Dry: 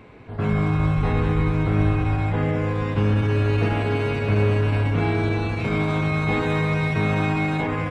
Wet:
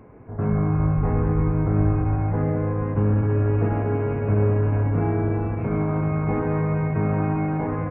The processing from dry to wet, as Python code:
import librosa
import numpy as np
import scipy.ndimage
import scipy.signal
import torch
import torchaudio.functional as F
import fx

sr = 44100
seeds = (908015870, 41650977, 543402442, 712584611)

y = scipy.ndimage.gaussian_filter1d(x, 5.6, mode='constant')